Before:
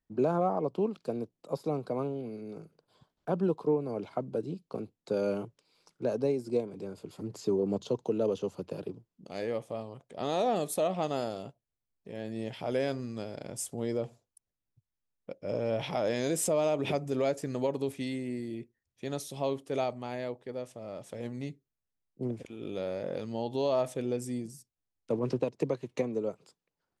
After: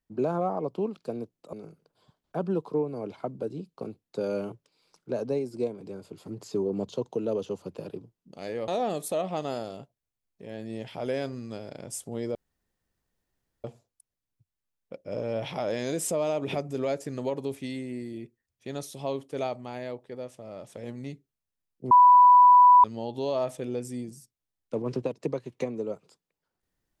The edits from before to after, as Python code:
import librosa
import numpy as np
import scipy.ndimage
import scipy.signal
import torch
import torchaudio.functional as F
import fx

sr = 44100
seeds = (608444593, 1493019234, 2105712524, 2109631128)

y = fx.edit(x, sr, fx.cut(start_s=1.53, length_s=0.93),
    fx.cut(start_s=9.61, length_s=0.73),
    fx.insert_room_tone(at_s=14.01, length_s=1.29),
    fx.bleep(start_s=22.28, length_s=0.93, hz=989.0, db=-11.5), tone=tone)